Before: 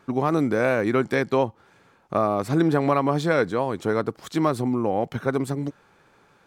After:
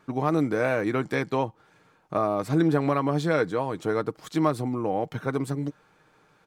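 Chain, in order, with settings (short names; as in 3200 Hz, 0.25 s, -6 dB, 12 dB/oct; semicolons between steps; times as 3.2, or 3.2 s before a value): comb 6.5 ms, depth 36%; gain -3.5 dB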